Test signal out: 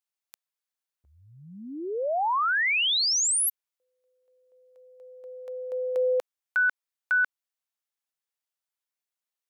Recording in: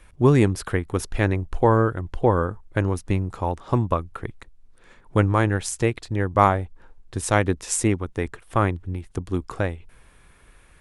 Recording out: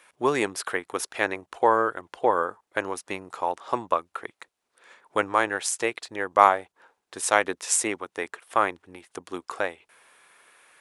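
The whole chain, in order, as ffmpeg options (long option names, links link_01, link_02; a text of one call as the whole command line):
ffmpeg -i in.wav -af "highpass=580,volume=2dB" out.wav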